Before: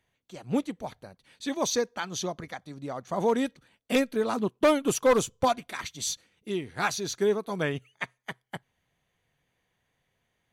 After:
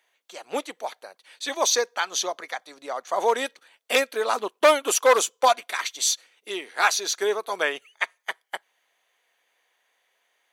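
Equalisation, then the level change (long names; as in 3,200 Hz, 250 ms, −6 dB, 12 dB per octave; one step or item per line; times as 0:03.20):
Bessel high-pass filter 660 Hz, order 4
+8.5 dB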